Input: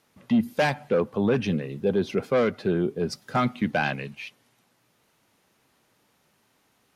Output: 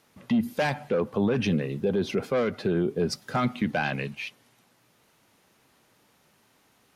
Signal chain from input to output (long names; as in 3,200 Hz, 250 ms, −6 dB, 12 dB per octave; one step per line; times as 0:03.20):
brickwall limiter −19.5 dBFS, peak gain reduction 7 dB
level +3 dB